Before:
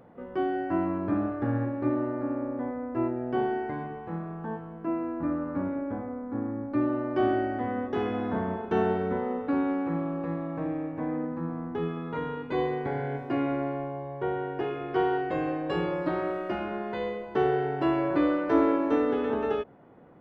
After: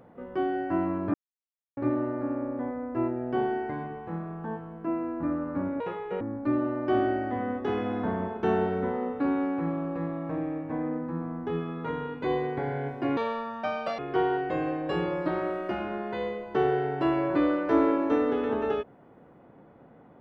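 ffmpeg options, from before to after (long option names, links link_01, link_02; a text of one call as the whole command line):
ffmpeg -i in.wav -filter_complex "[0:a]asplit=7[link_01][link_02][link_03][link_04][link_05][link_06][link_07];[link_01]atrim=end=1.14,asetpts=PTS-STARTPTS,afade=type=out:start_time=1.136:duration=0.004:curve=hsin[link_08];[link_02]atrim=start=1.14:end=1.77,asetpts=PTS-STARTPTS,volume=0[link_09];[link_03]atrim=start=1.77:end=5.804,asetpts=PTS-STARTPTS,afade=type=in:duration=0.004:curve=hsin[link_10];[link_04]atrim=start=5.8:end=6.49,asetpts=PTS-STARTPTS,asetrate=74529,aresample=44100,atrim=end_sample=18005,asetpts=PTS-STARTPTS[link_11];[link_05]atrim=start=6.486:end=13.454[link_12];[link_06]atrim=start=13.45:end=14.79,asetpts=PTS-STARTPTS,asetrate=72324,aresample=44100[link_13];[link_07]atrim=start=14.786[link_14];[link_08][link_09][link_10]concat=n=3:v=0:a=1[link_15];[link_15][link_11]acrossfade=duration=0.004:curve1=hsin:curve2=hsin[link_16];[link_16][link_12]acrossfade=duration=0.004:curve1=hsin:curve2=hsin[link_17];[link_17][link_13]acrossfade=duration=0.004:curve1=hsin:curve2=hsin[link_18];[link_18][link_14]acrossfade=duration=0.004:curve1=hsin:curve2=hsin" out.wav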